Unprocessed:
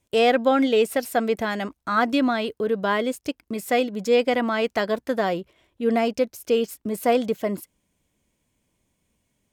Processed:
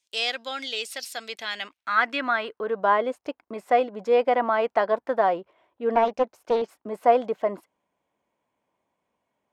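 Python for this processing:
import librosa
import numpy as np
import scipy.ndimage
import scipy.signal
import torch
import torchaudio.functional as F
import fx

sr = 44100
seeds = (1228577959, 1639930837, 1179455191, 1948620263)

y = fx.filter_sweep_bandpass(x, sr, from_hz=4700.0, to_hz=870.0, start_s=1.19, end_s=2.84, q=1.6)
y = fx.doppler_dist(y, sr, depth_ms=0.29, at=(5.95, 6.62))
y = y * 10.0 ** (6.0 / 20.0)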